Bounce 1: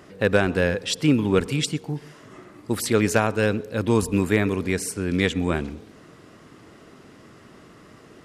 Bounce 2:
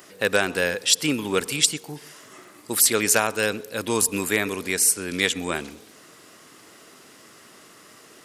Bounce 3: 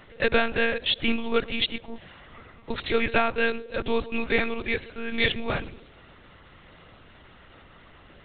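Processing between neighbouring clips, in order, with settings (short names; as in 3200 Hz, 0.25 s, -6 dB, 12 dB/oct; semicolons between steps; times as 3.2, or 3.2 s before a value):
RIAA curve recording
monotone LPC vocoder at 8 kHz 230 Hz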